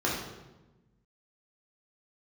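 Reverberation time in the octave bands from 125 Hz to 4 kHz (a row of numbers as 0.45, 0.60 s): 1.7, 1.6, 1.2, 1.0, 0.85, 0.80 s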